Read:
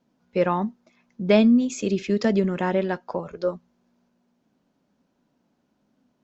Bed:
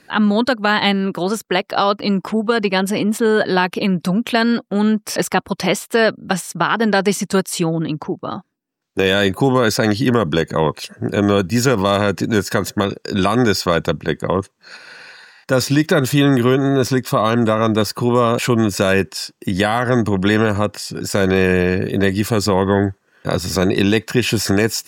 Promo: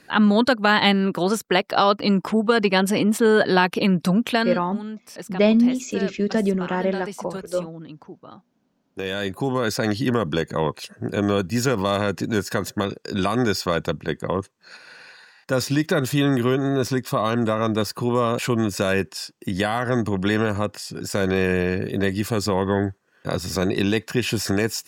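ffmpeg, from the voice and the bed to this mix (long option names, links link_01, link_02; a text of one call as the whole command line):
ffmpeg -i stem1.wav -i stem2.wav -filter_complex "[0:a]adelay=4100,volume=0dB[link_01];[1:a]volume=10dB,afade=type=out:start_time=4.21:duration=0.46:silence=0.158489,afade=type=in:start_time=8.72:duration=1.23:silence=0.266073[link_02];[link_01][link_02]amix=inputs=2:normalize=0" out.wav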